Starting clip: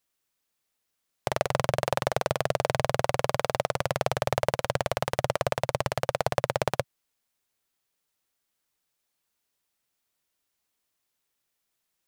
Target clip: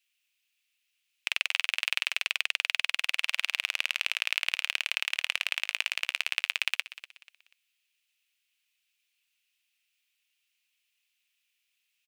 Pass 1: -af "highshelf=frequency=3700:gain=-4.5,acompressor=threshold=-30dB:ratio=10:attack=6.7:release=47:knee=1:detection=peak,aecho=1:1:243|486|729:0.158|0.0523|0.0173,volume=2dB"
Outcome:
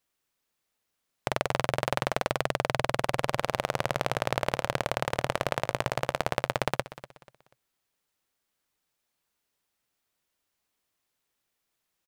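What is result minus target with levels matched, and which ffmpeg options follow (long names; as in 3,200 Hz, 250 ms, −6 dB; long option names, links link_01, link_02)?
2,000 Hz band −3.5 dB
-af "highshelf=frequency=3700:gain=-4.5,acompressor=threshold=-30dB:ratio=10:attack=6.7:release=47:knee=1:detection=peak,highpass=frequency=2600:width_type=q:width=4.3,aecho=1:1:243|486|729:0.158|0.0523|0.0173,volume=2dB"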